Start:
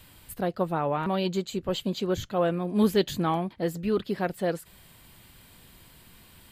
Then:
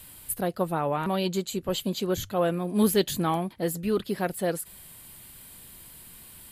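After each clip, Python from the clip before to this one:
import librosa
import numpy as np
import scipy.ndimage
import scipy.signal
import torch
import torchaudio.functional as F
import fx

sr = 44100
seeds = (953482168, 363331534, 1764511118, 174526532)

y = fx.peak_eq(x, sr, hz=11000.0, db=14.5, octaves=0.94)
y = fx.hum_notches(y, sr, base_hz=50, count=2)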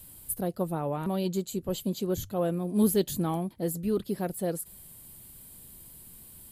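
y = fx.peak_eq(x, sr, hz=2000.0, db=-11.0, octaves=2.9)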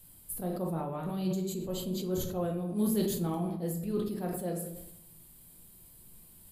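y = fx.room_shoebox(x, sr, seeds[0], volume_m3=200.0, walls='mixed', distance_m=0.82)
y = fx.sustainer(y, sr, db_per_s=45.0)
y = y * 10.0 ** (-8.0 / 20.0)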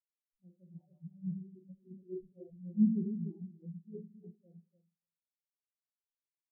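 y = fx.echo_feedback(x, sr, ms=293, feedback_pct=34, wet_db=-3.5)
y = fx.spectral_expand(y, sr, expansion=4.0)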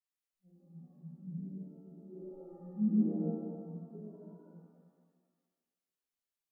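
y = fx.rev_shimmer(x, sr, seeds[1], rt60_s=1.4, semitones=7, shimmer_db=-8, drr_db=-8.0)
y = y * 10.0 ** (-8.0 / 20.0)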